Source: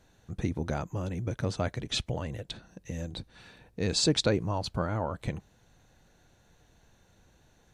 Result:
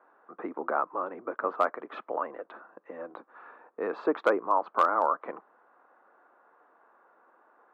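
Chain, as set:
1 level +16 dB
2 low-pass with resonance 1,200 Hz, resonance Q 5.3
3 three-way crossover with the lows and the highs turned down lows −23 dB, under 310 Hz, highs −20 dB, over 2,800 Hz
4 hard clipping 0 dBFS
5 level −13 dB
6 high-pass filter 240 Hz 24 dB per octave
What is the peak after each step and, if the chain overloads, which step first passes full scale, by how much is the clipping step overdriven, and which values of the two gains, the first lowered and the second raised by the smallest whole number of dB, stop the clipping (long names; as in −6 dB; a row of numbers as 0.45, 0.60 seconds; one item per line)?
+3.0, +5.0, +4.5, 0.0, −13.0, −10.0 dBFS
step 1, 4.5 dB
step 1 +11 dB, step 5 −8 dB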